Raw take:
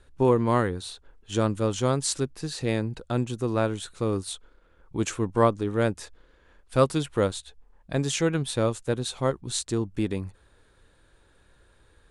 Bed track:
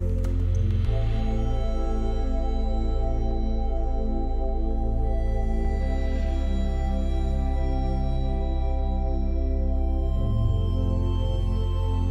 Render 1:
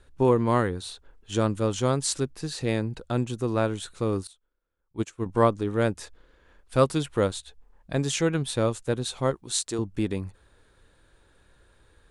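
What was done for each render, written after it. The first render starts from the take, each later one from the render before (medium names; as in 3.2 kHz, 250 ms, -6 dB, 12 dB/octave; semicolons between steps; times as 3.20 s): 4.27–5.26 s: upward expansion 2.5:1, over -37 dBFS; 9.35–9.79 s: tone controls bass -11 dB, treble +3 dB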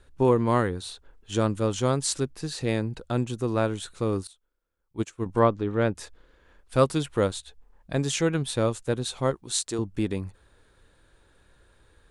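5.39–5.95 s: low-pass 3.7 kHz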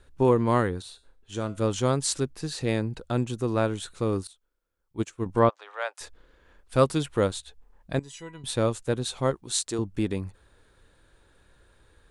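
0.82–1.58 s: feedback comb 130 Hz, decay 0.35 s; 5.49–6.01 s: steep high-pass 640 Hz; 7.99–8.44 s: feedback comb 970 Hz, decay 0.17 s, mix 90%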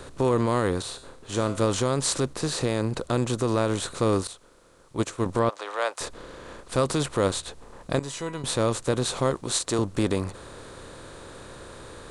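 spectral levelling over time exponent 0.6; peak limiter -12.5 dBFS, peak gain reduction 6.5 dB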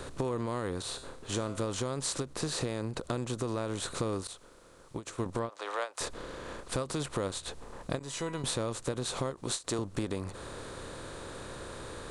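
compression, threshold -30 dBFS, peak gain reduction 11.5 dB; endings held to a fixed fall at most 280 dB/s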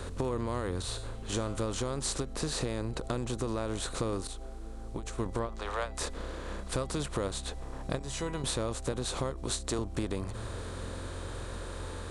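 add bed track -17.5 dB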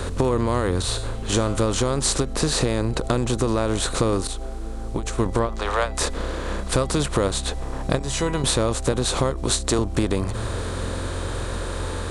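trim +11.5 dB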